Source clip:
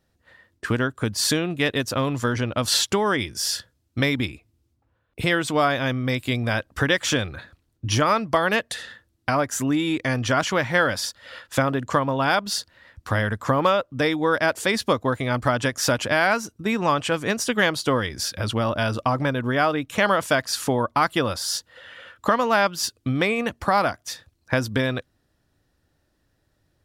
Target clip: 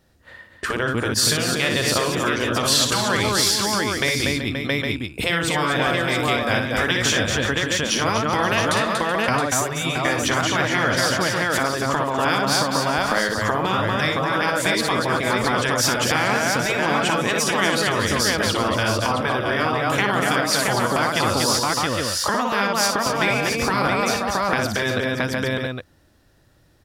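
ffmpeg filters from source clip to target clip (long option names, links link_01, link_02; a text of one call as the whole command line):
ffmpeg -i in.wav -af "aecho=1:1:59|238|379|526|671|810:0.473|0.447|0.141|0.168|0.447|0.251,acompressor=threshold=-26dB:ratio=2.5,afftfilt=real='re*lt(hypot(re,im),0.251)':imag='im*lt(hypot(re,im),0.251)':win_size=1024:overlap=0.75,volume=8.5dB" out.wav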